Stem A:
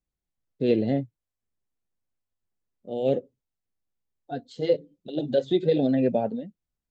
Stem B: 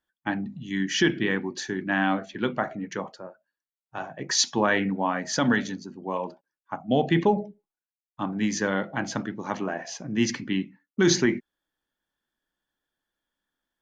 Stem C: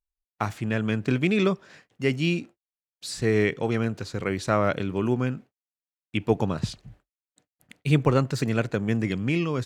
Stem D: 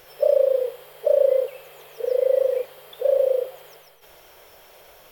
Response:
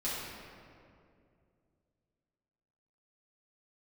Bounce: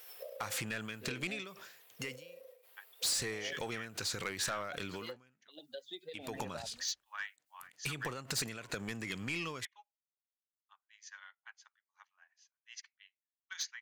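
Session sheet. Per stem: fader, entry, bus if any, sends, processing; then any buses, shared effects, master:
−13.0 dB, 0.40 s, bus B, no send, spectral dynamics exaggerated over time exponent 1.5
−10.0 dB, 2.50 s, bus B, no send, high-pass filter 1,000 Hz 24 dB per octave; expander for the loud parts 2.5 to 1, over −45 dBFS
+1.5 dB, 0.00 s, bus A, no send, every ending faded ahead of time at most 110 dB per second
−12.5 dB, 0.00 s, bus A, no send, downward compressor 5 to 1, threshold −21 dBFS, peak gain reduction 8 dB; notch comb filter 290 Hz; every ending faded ahead of time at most 110 dB per second; automatic ducking −12 dB, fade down 0.85 s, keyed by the third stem
bus A: 0.0 dB, high-shelf EQ 7,200 Hz +8 dB; downward compressor 12 to 1, threshold −31 dBFS, peak gain reduction 16.5 dB
bus B: 0.0 dB, meter weighting curve A; downward compressor 12 to 1, threshold −40 dBFS, peak gain reduction 12.5 dB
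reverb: not used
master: tilt shelving filter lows −8 dB, about 710 Hz; soft clipping −29 dBFS, distortion −10 dB

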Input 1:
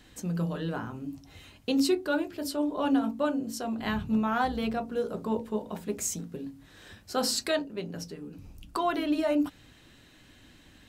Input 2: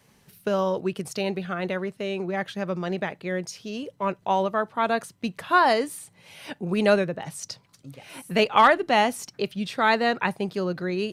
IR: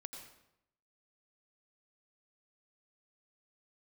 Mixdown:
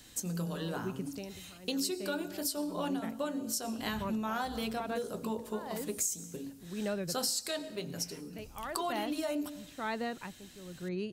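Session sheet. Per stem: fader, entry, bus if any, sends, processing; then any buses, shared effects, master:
−5.0 dB, 0.00 s, send −6.5 dB, bass and treble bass −2 dB, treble +14 dB
−12.0 dB, 0.00 s, no send, low-shelf EQ 260 Hz +10.5 dB; tremolo with a sine in dB 1 Hz, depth 18 dB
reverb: on, RT60 0.80 s, pre-delay 80 ms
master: downward compressor 6 to 1, threshold −31 dBFS, peak gain reduction 12.5 dB

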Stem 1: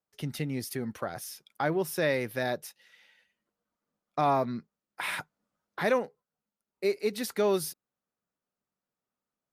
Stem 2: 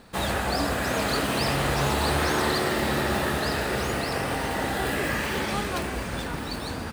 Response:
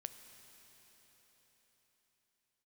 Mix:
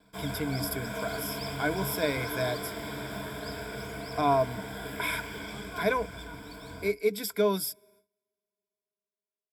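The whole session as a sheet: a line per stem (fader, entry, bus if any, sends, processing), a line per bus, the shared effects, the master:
−3.5 dB, 0.00 s, send −19.5 dB, high-shelf EQ 9,400 Hz +7.5 dB
−15.0 dB, 0.00 s, send −16 dB, no processing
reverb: on, RT60 4.8 s, pre-delay 8 ms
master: noise gate with hold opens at −55 dBFS; EQ curve with evenly spaced ripples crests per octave 1.7, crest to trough 16 dB

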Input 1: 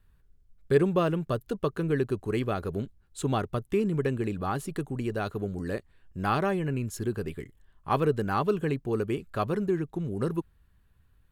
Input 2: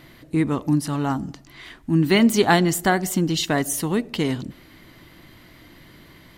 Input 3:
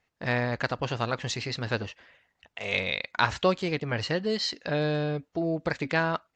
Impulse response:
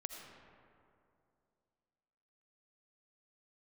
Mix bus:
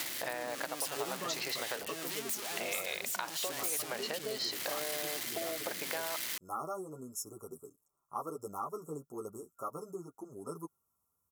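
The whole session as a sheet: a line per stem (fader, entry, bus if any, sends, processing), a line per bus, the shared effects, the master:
−3.5 dB, 0.25 s, no send, brick-wall band-stop 1,400–5,200 Hz; multi-voice chorus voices 2, 0.55 Hz, delay 10 ms, depth 3.3 ms
−11.5 dB, 0.00 s, no send, sign of each sample alone; rotating-speaker cabinet horn 0.75 Hz
−2.0 dB, 0.00 s, no send, parametric band 650 Hz +14.5 dB 1.9 octaves; downward compressor, threshold −26 dBFS, peak gain reduction 18 dB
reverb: not used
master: high-pass filter 290 Hz 6 dB per octave; spectral tilt +3 dB per octave; downward compressor 3 to 1, threshold −35 dBFS, peak gain reduction 9.5 dB

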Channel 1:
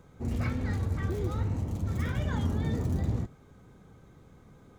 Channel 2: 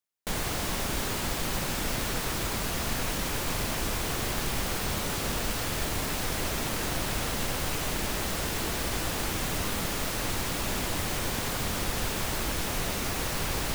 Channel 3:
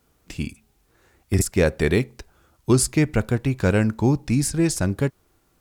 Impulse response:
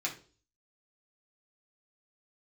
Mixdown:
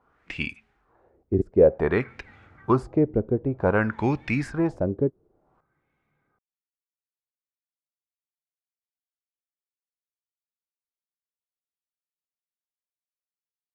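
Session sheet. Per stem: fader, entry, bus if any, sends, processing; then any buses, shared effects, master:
−18.0 dB, 1.60 s, send −5.5 dB, no processing
muted
+1.5 dB, 0.00 s, no send, high-shelf EQ 6,700 Hz +8 dB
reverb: on, RT60 0.40 s, pre-delay 3 ms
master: low-shelf EQ 400 Hz −9.5 dB; auto-filter low-pass sine 0.54 Hz 380–2,500 Hz

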